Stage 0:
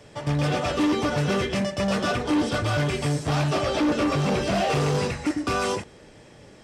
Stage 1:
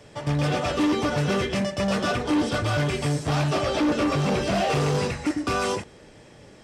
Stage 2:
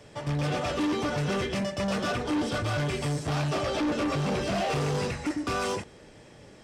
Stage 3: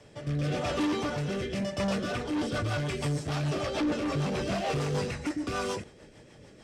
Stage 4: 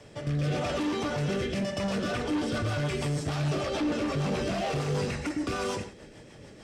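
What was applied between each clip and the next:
no processing that can be heard
soft clipping −21 dBFS, distortion −16 dB; level −2 dB
rotating-speaker cabinet horn 0.9 Hz, later 6.7 Hz, at 0:01.68
brickwall limiter −26.5 dBFS, peak gain reduction 8 dB; convolution reverb, pre-delay 3 ms, DRR 10 dB; level +3.5 dB

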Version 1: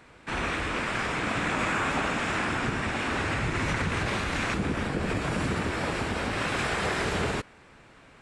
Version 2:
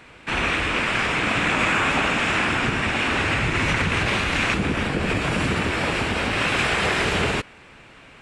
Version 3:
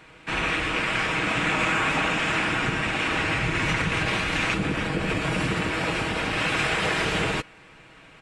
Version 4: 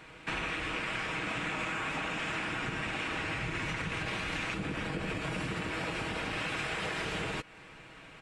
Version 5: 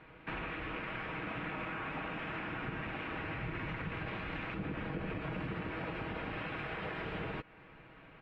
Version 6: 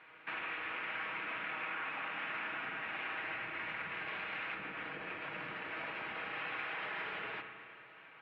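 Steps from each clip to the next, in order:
parametric band 2,700 Hz +6.5 dB 0.8 octaves; level +5 dB
comb filter 6.3 ms, depth 41%; level −3.5 dB
downward compressor 6 to 1, threshold −31 dBFS, peak gain reduction 10.5 dB; level −1.5 dB
high-frequency loss of the air 460 metres; level −2 dB
resonant band-pass 2,200 Hz, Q 0.67; spring reverb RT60 2.1 s, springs 33/52 ms, chirp 55 ms, DRR 4.5 dB; level +2 dB

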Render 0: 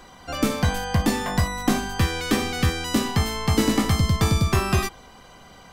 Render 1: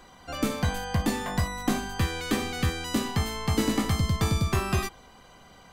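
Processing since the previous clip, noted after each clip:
notch filter 5,400 Hz, Q 15
level −5 dB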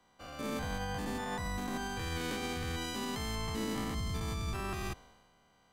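spectrum averaged block by block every 200 ms
brickwall limiter −27 dBFS, peak gain reduction 8.5 dB
multiband upward and downward expander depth 70%
level −1 dB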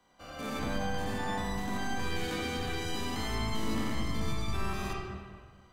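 soft clipping −27 dBFS, distortion −24 dB
convolution reverb RT60 1.7 s, pre-delay 10 ms, DRR −2 dB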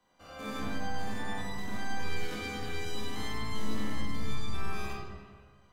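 resonators tuned to a chord C#2 major, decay 0.34 s
level +8 dB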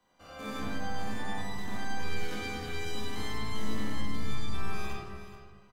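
single-tap delay 425 ms −13 dB

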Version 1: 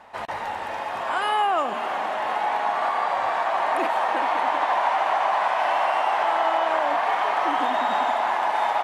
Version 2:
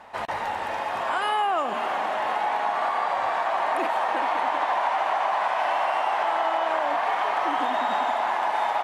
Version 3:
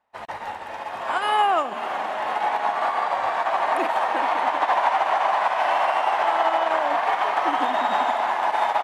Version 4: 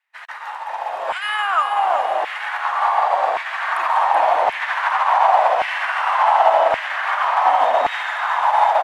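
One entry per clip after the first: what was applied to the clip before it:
downward compressor 2 to 1, threshold −25 dBFS, peak gain reduction 4.5 dB; level +1.5 dB
expander for the loud parts 2.5 to 1, over −44 dBFS; level +6 dB
echo with shifted repeats 380 ms, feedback 54%, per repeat −32 Hz, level −6 dB; auto-filter high-pass saw down 0.89 Hz 490–2,200 Hz

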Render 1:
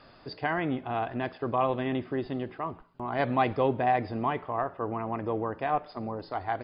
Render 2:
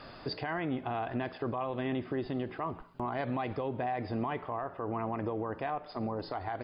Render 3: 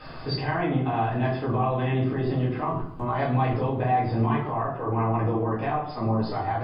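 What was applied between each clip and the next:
downward compressor 2.5 to 1, threshold −38 dBFS, peak gain reduction 12 dB; brickwall limiter −31 dBFS, peak gain reduction 7 dB; level +6 dB
convolution reverb RT60 0.60 s, pre-delay 4 ms, DRR −7.5 dB; level −1 dB

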